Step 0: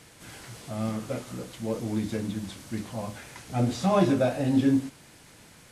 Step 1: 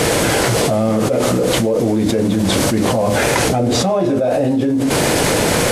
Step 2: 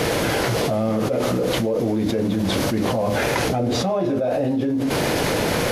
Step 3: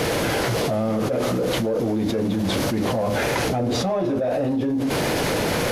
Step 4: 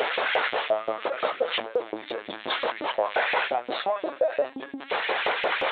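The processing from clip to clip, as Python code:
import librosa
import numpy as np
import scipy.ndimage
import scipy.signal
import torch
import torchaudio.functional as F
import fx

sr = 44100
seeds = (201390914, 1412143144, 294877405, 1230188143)

y1 = fx.peak_eq(x, sr, hz=500.0, db=11.0, octaves=1.4)
y1 = fx.env_flatten(y1, sr, amount_pct=100)
y1 = y1 * 10.0 ** (-4.0 / 20.0)
y2 = fx.peak_eq(y1, sr, hz=8200.0, db=-10.0, octaves=0.56)
y2 = y2 * 10.0 ** (-5.5 / 20.0)
y3 = 10.0 ** (-14.0 / 20.0) * np.tanh(y2 / 10.0 ** (-14.0 / 20.0))
y4 = fx.lpc_vocoder(y3, sr, seeds[0], excitation='pitch_kept', order=16)
y4 = fx.filter_lfo_highpass(y4, sr, shape='saw_up', hz=5.7, low_hz=510.0, high_hz=2500.0, q=1.5)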